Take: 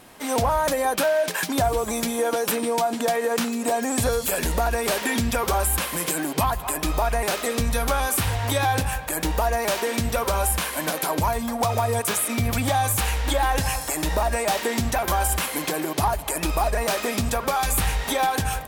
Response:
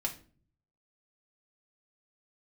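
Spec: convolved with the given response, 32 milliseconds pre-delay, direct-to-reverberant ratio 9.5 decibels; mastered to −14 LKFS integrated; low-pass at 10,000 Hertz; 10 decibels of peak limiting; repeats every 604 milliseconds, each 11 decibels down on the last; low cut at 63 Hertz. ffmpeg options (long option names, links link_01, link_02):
-filter_complex "[0:a]highpass=63,lowpass=10000,alimiter=limit=-21dB:level=0:latency=1,aecho=1:1:604|1208|1812:0.282|0.0789|0.0221,asplit=2[link_01][link_02];[1:a]atrim=start_sample=2205,adelay=32[link_03];[link_02][link_03]afir=irnorm=-1:irlink=0,volume=-12dB[link_04];[link_01][link_04]amix=inputs=2:normalize=0,volume=14.5dB"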